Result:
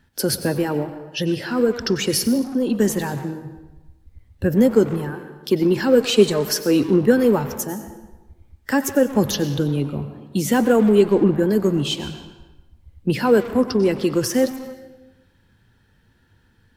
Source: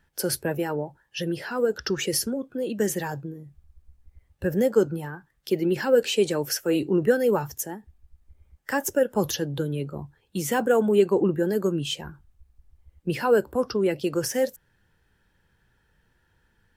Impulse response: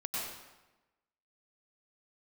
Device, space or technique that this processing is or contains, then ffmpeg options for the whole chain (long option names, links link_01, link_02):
saturated reverb return: -filter_complex "[0:a]equalizer=frequency=100:width_type=o:width=0.67:gain=9,equalizer=frequency=250:width_type=o:width=0.67:gain=9,equalizer=frequency=4000:width_type=o:width=0.67:gain=5,asettb=1/sr,asplit=3[link_01][link_02][link_03];[link_01]atrim=end=6.004[link_04];[link_02]atrim=start=6:end=6.61,asetpts=PTS-STARTPTS,afade=type=in:duration=0.004:curve=qsin,afade=type=out:start_time=0.606:duration=0.004:curve=qsin,aecho=1:1:4.8:0.59,atrim=end_sample=26901[link_05];[link_03]atrim=start=6.606[link_06];[link_04][link_05]acrossfade=duration=0.004:curve1=hsin:curve2=qsin[link_07];[link_07][link_06]acrossfade=duration=0.004:curve1=qsin:curve2=hsin,asplit=2[link_08][link_09];[1:a]atrim=start_sample=2205[link_10];[link_09][link_10]afir=irnorm=-1:irlink=0,asoftclip=type=tanh:threshold=-22dB,volume=-8dB[link_11];[link_08][link_11]amix=inputs=2:normalize=0,volume=1.5dB"